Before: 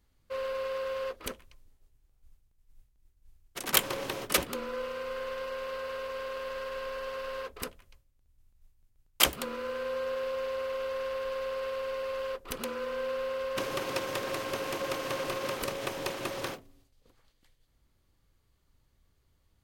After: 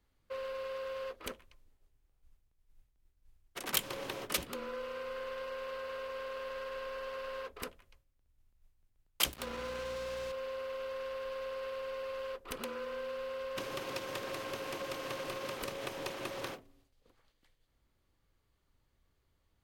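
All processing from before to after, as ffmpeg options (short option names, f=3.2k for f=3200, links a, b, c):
-filter_complex "[0:a]asettb=1/sr,asplit=3[a][b][c];[a]atrim=end=9.324[d];[b]atrim=start=9.32:end=10.32,asetpts=PTS-STARTPTS,afade=t=in:d=0.004:c=qsin,afade=t=out:st=0.996:d=0.004:c=qsin,aeval=exprs='val(0)+0.00501*(sin(2*PI*60*n/s)+sin(2*PI*2*60*n/s)/2+sin(2*PI*3*60*n/s)/3+sin(2*PI*4*60*n/s)/4+sin(2*PI*5*60*n/s)/5)':c=same,acrusher=bits=5:mix=0:aa=0.5[e];[c]atrim=start=10.316[f];[d][e]acrossfade=d=0.004:c1=hsin:c2=qsin[g];[g][f]acrossfade=d=0.004:c1=qsin:c2=hsin,bass=f=250:g=-4,treble=f=4k:g=-5,acrossover=split=230|3000[h][i][j];[i]acompressor=threshold=-36dB:ratio=6[k];[h][k][j]amix=inputs=3:normalize=0,volume=-2dB"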